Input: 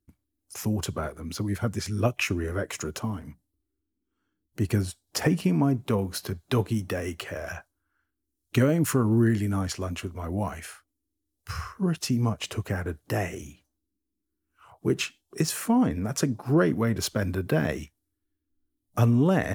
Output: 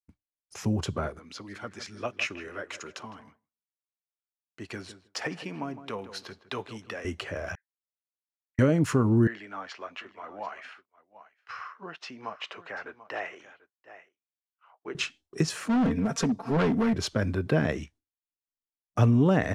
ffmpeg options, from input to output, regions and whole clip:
-filter_complex "[0:a]asettb=1/sr,asplit=3[s0][s1][s2];[s0]atrim=end=1.194[s3];[s1]atrim=start=1.19:end=7.05,asetpts=PTS-STARTPTS,afade=t=in:d=0.004:c=qsin,afade=t=out:st=5.856:d=0.004:c=qsin,highpass=f=1200:p=1,highshelf=f=7200:g=-9,asplit=2[s4][s5];[s5]adelay=159,lowpass=f=1900:p=1,volume=0.251,asplit=2[s6][s7];[s7]adelay=159,lowpass=f=1900:p=1,volume=0.29,asplit=2[s8][s9];[s9]adelay=159,lowpass=f=1900:p=1,volume=0.29[s10];[s4][s6][s8][s10]amix=inputs=4:normalize=0,atrim=end_sample=258426[s11];[s2]atrim=start=7.046[s12];[s3][s11]acrossfade=d=0.004:c1=hsin:c2=qsin[s13];[s13][s12]acrossfade=d=0.004:c1=qsin:c2=hsin,asettb=1/sr,asplit=3[s14][s15][s16];[s14]atrim=end=7.554[s17];[s15]atrim=start=7.55:end=8.59,asetpts=PTS-STARTPTS,afade=t=in:d=0.004:c=qsin,afade=t=out:st=1.036:d=0.004:c=qsin,asuperpass=centerf=1900:order=4:qfactor=7.7,aderivative[s18];[s16]atrim=start=8.586[s19];[s17][s18]acrossfade=d=0.004:c1=hsin:c2=qsin[s20];[s20][s19]acrossfade=d=0.004:c1=qsin:c2=hsin,asettb=1/sr,asplit=3[s21][s22][s23];[s21]atrim=end=9.274[s24];[s22]atrim=start=9.27:end=14.95,asetpts=PTS-STARTPTS,afade=t=in:d=0.004:c=qsin,afade=t=out:st=5.676:d=0.004:c=qsin,highpass=760,lowpass=3000,aecho=1:1:739:0.178,atrim=end_sample=250488[s25];[s23]atrim=start=14.946[s26];[s24][s25]acrossfade=d=0.004:c1=hsin:c2=qsin[s27];[s27][s26]acrossfade=d=0.004:c1=qsin:c2=hsin,asettb=1/sr,asplit=3[s28][s29][s30];[s28]atrim=end=15.694[s31];[s29]atrim=start=15.69:end=16.94,asetpts=PTS-STARTPTS,afade=t=in:d=0.004:c=qsin,afade=t=out:st=1.246:d=0.004:c=qsin,aecho=1:1:4.4:0.95,atrim=end_sample=55125,volume=11.2,asoftclip=hard,volume=0.0891[s32];[s30]atrim=start=16.936[s33];[s31][s32]acrossfade=d=0.004:c1=hsin:c2=qsin[s34];[s34][s33]acrossfade=d=0.004:c1=qsin:c2=hsin,agate=range=0.0224:threshold=0.00316:ratio=3:detection=peak,lowpass=5800"

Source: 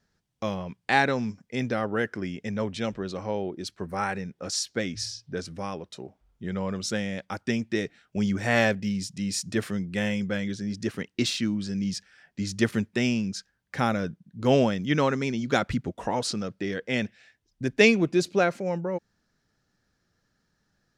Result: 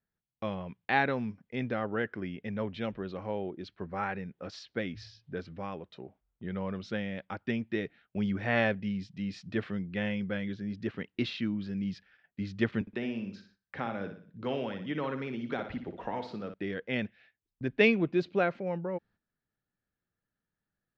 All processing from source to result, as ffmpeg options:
-filter_complex "[0:a]asettb=1/sr,asplit=3[s0][s1][s2];[s0]atrim=end=12.814[s3];[s1]atrim=start=12.81:end=16.54,asetpts=PTS-STARTPTS,afade=t=in:d=0.004:c=qsin,afade=t=out:st=3.726:d=0.004:c=qsin,acrossover=split=230|1300[s4][s5][s6];[s4]acompressor=threshold=0.00794:ratio=4[s7];[s5]acompressor=threshold=0.0398:ratio=4[s8];[s6]acompressor=threshold=0.0126:ratio=4[s9];[s7][s8][s9]amix=inputs=3:normalize=0,aecho=1:1:60|120|180|240|300:0.398|0.163|0.0669|0.0274|0.0112,atrim=end_sample=164493[s10];[s2]atrim=start=16.536[s11];[s3][s10]acrossfade=d=0.004:c1=hsin:c2=qsin[s12];[s12][s11]acrossfade=d=0.004:c1=qsin:c2=hsin,agate=range=0.282:threshold=0.00224:ratio=16:detection=peak,lowpass=f=3500:w=0.5412,lowpass=f=3500:w=1.3066,volume=0.562"

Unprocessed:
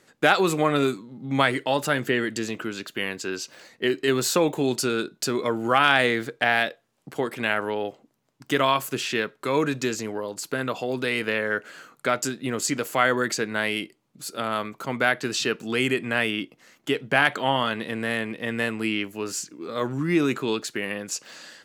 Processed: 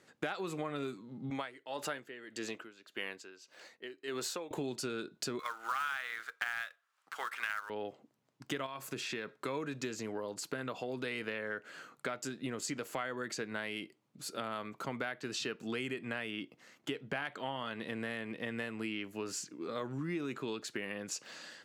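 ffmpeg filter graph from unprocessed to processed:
-filter_complex "[0:a]asettb=1/sr,asplit=3[s0][s1][s2];[s0]atrim=end=1.304[s3];[s1]atrim=start=1.3:end=4.51,asetpts=PTS-STARTPTS,afade=t=in:d=0.004:c=qsin,afade=t=out:st=3.206:d=0.004:c=qsin,bass=f=250:g=-11,treble=f=4000:g=0,aeval=exprs='val(0)*pow(10,-19*(0.5-0.5*cos(2*PI*1.7*n/s))/20)':c=same[s4];[s2]atrim=start=4.506[s5];[s3][s4]acrossfade=d=0.004:c1=hsin:c2=qsin[s6];[s6][s5]acrossfade=d=0.004:c1=qsin:c2=hsin,asettb=1/sr,asplit=3[s7][s8][s9];[s7]atrim=end=5.394[s10];[s8]atrim=start=5.39:end=7.7,asetpts=PTS-STARTPTS,afade=t=in:d=0.004:c=qsin,afade=t=out:st=2.306:d=0.004:c=qsin,highpass=f=1300:t=q:w=3.3,acrusher=bits=3:mode=log:mix=0:aa=0.000001[s11];[s9]atrim=start=7.696[s12];[s10][s11]acrossfade=d=0.004:c1=hsin:c2=qsin[s13];[s13][s12]acrossfade=d=0.004:c1=qsin:c2=hsin,asettb=1/sr,asplit=3[s14][s15][s16];[s14]atrim=end=8.664[s17];[s15]atrim=start=8.66:end=9.4,asetpts=PTS-STARTPTS,afade=t=in:d=0.004:c=qsin,afade=t=out:st=0.736:d=0.004:c=qsin,acompressor=threshold=0.0355:ratio=2.5:attack=3.2:release=140:knee=1:detection=peak,bandreject=f=3000:w=11[s18];[s16]atrim=start=9.396[s19];[s17][s18]acrossfade=d=0.004:c1=hsin:c2=qsin[s20];[s20][s19]acrossfade=d=0.004:c1=qsin:c2=hsin,highpass=51,highshelf=f=9900:g=-9,acompressor=threshold=0.0316:ratio=6,volume=0.562"

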